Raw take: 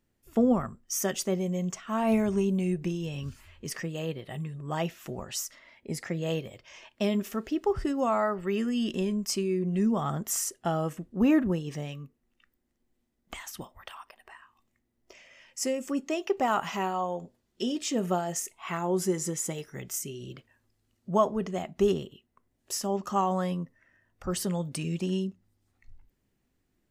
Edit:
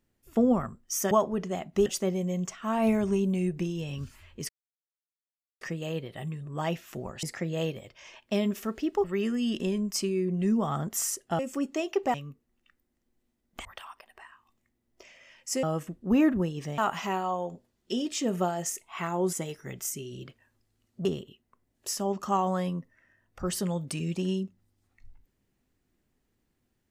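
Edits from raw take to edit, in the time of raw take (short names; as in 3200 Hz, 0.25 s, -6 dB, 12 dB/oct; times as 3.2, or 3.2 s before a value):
3.74 insert silence 1.12 s
5.36–5.92 cut
7.73–8.38 cut
10.73–11.88 swap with 15.73–16.48
13.39–13.75 cut
19.03–19.42 cut
21.14–21.89 move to 1.11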